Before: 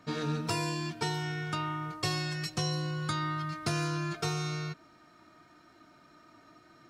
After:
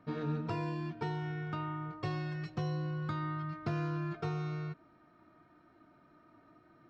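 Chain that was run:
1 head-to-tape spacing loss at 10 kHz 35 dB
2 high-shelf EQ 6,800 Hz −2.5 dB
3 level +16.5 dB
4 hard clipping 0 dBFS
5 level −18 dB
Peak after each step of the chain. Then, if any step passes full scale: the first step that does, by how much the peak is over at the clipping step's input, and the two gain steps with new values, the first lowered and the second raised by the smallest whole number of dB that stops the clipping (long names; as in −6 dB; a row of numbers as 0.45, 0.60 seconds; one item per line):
−20.5, −20.5, −4.0, −4.0, −22.0 dBFS
no step passes full scale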